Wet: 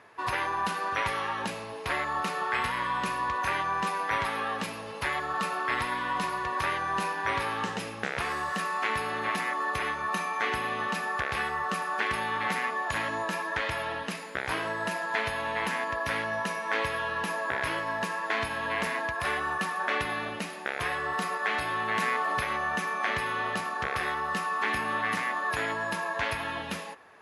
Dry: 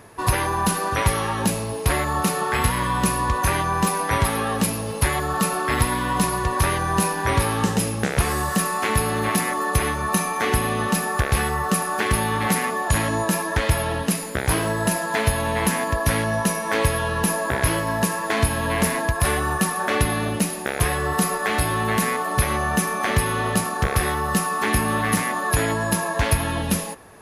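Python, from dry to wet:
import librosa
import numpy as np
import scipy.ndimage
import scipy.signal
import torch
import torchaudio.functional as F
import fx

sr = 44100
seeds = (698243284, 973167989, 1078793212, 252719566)

y = scipy.signal.sosfilt(scipy.signal.butter(2, 2100.0, 'lowpass', fs=sr, output='sos'), x)
y = fx.tilt_eq(y, sr, slope=4.5)
y = fx.env_flatten(y, sr, amount_pct=50, at=(21.94, 22.39), fade=0.02)
y = y * librosa.db_to_amplitude(-5.5)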